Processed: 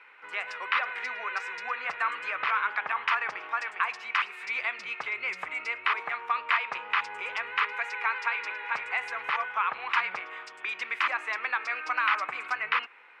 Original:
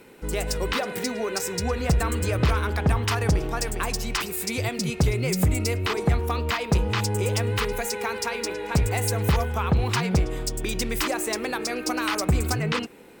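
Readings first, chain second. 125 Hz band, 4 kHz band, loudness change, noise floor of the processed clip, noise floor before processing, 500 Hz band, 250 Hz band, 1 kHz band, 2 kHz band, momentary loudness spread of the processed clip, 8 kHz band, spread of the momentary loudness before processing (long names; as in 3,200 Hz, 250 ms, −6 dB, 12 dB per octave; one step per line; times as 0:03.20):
below −40 dB, −7.5 dB, −4.0 dB, −48 dBFS, −36 dBFS, −17.5 dB, below −30 dB, +1.0 dB, +3.5 dB, 6 LU, below −20 dB, 5 LU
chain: Chebyshev band-pass filter 1,100–2,400 Hz, order 2
level +4.5 dB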